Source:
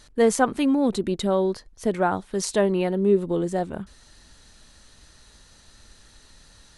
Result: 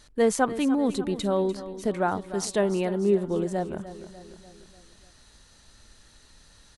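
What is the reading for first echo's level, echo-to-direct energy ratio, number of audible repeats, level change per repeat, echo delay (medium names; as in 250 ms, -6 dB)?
-14.0 dB, -12.5 dB, 4, -5.5 dB, 296 ms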